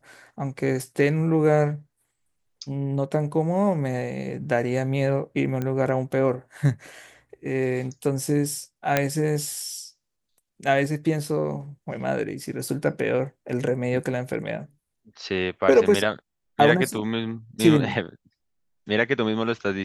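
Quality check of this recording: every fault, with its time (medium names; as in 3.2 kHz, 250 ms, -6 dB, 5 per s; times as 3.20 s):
5.62 s: pop -16 dBFS
8.97 s: pop -5 dBFS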